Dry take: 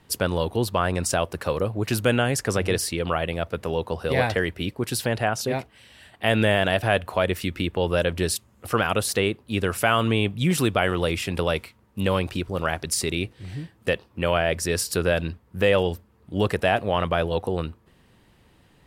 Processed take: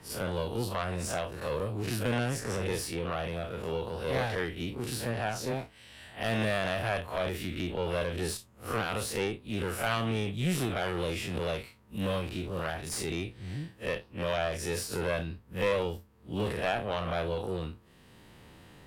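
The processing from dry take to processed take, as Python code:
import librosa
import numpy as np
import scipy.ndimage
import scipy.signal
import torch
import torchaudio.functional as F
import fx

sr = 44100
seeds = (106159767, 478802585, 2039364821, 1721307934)

y = fx.spec_blur(x, sr, span_ms=85.0)
y = fx.tube_stage(y, sr, drive_db=17.0, bias=0.8)
y = fx.band_squash(y, sr, depth_pct=40)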